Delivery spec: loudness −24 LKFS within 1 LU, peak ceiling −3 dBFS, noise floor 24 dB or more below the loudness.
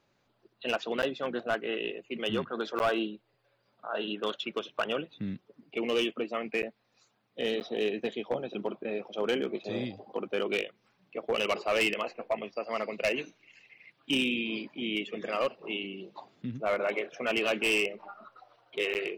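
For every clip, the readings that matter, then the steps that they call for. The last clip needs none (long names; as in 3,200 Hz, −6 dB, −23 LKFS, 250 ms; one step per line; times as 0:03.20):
share of clipped samples 0.7%; peaks flattened at −21.5 dBFS; number of dropouts 5; longest dropout 9.6 ms; integrated loudness −32.0 LKFS; sample peak −21.5 dBFS; target loudness −24.0 LKFS
→ clipped peaks rebuilt −21.5 dBFS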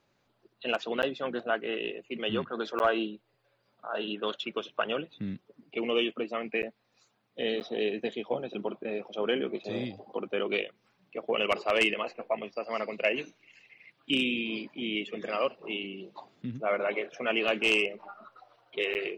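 share of clipped samples 0.0%; number of dropouts 5; longest dropout 9.6 ms
→ repair the gap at 0:01.02/0:02.79/0:06.62/0:07.60/0:18.94, 9.6 ms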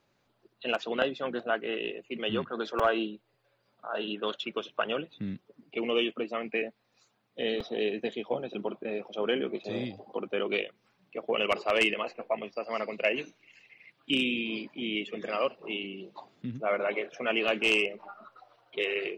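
number of dropouts 0; integrated loudness −31.5 LKFS; sample peak −9.0 dBFS; target loudness −24.0 LKFS
→ level +7.5 dB
brickwall limiter −3 dBFS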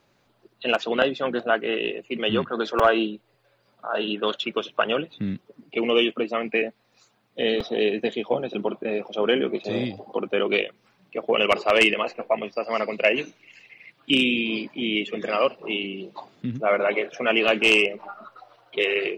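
integrated loudness −24.0 LKFS; sample peak −3.0 dBFS; background noise floor −66 dBFS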